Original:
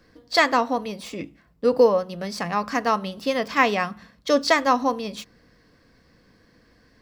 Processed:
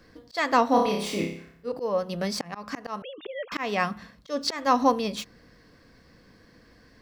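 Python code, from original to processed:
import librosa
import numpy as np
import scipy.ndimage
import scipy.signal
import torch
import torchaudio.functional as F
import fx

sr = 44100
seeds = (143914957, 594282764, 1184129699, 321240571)

y = fx.sine_speech(x, sr, at=(3.02, 3.52))
y = fx.auto_swell(y, sr, attack_ms=325.0)
y = fx.room_flutter(y, sr, wall_m=5.1, rt60_s=0.6, at=(0.68, 1.72))
y = y * librosa.db_to_amplitude(2.0)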